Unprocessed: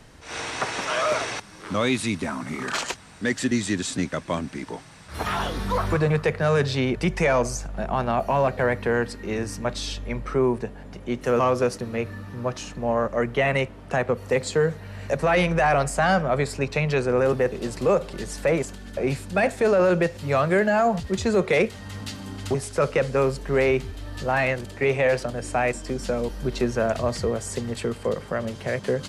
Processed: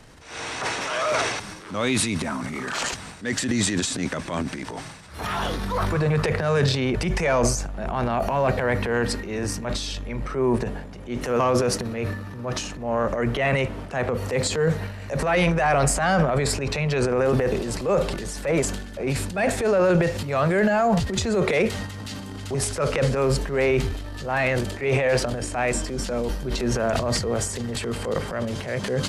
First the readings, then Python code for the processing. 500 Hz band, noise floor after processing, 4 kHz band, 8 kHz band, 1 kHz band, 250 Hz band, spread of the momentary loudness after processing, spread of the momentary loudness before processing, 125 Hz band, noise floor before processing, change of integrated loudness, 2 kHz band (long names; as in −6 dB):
−1.0 dB, −38 dBFS, +3.5 dB, +6.0 dB, −0.5 dB, +1.0 dB, 10 LU, 10 LU, +2.5 dB, −42 dBFS, +0.5 dB, 0.0 dB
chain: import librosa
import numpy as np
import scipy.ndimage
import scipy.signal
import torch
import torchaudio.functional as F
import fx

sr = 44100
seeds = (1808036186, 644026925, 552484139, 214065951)

y = fx.transient(x, sr, attack_db=-7, sustain_db=10)